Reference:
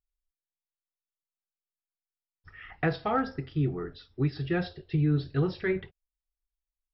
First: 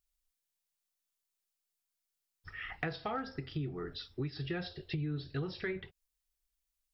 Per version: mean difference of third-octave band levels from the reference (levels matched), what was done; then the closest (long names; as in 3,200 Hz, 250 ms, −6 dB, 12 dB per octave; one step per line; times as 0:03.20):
4.5 dB: high-shelf EQ 2,600 Hz +9 dB
downward compressor 4 to 1, threshold −37 dBFS, peak gain reduction 13.5 dB
level +1 dB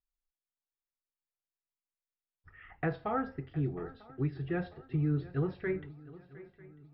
3.0 dB: low-pass filter 2,100 Hz 12 dB per octave
feedback echo with a long and a short gap by turns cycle 946 ms, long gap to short 3 to 1, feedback 40%, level −19 dB
level −5 dB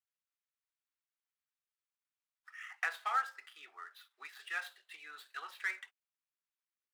16.0 dB: running median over 9 samples
high-pass filter 1,100 Hz 24 dB per octave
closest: second